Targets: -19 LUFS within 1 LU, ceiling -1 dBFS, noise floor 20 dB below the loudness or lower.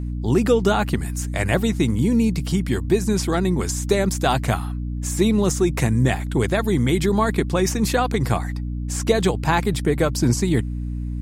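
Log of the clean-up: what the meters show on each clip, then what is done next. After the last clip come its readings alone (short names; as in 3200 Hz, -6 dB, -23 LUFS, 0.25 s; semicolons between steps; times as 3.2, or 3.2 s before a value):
hum 60 Hz; harmonics up to 300 Hz; hum level -24 dBFS; loudness -21.0 LUFS; peak -5.0 dBFS; loudness target -19.0 LUFS
-> notches 60/120/180/240/300 Hz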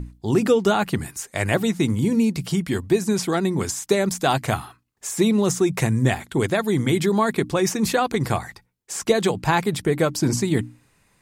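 hum none; loudness -22.0 LUFS; peak -5.5 dBFS; loudness target -19.0 LUFS
-> gain +3 dB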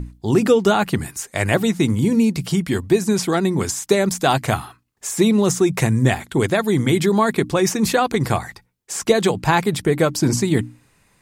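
loudness -19.0 LUFS; peak -2.5 dBFS; noise floor -60 dBFS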